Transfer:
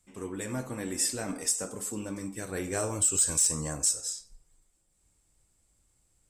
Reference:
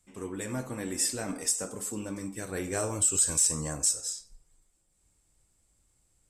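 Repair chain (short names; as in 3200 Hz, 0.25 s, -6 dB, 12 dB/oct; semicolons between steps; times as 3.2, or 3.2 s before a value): clip repair -17 dBFS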